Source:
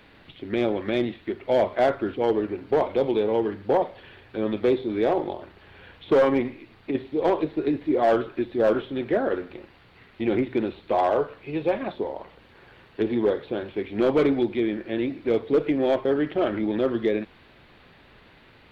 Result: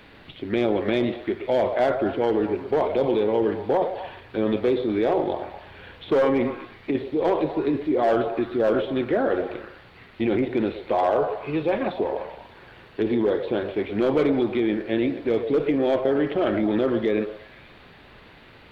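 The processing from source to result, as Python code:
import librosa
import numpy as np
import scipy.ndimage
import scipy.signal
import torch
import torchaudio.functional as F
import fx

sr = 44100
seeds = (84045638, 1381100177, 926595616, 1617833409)

p1 = fx.over_compress(x, sr, threshold_db=-26.0, ratio=-1.0)
p2 = x + F.gain(torch.from_numpy(p1), -2.5).numpy()
p3 = fx.echo_stepped(p2, sr, ms=121, hz=540.0, octaves=0.7, feedback_pct=70, wet_db=-7.0)
y = F.gain(torch.from_numpy(p3), -2.5).numpy()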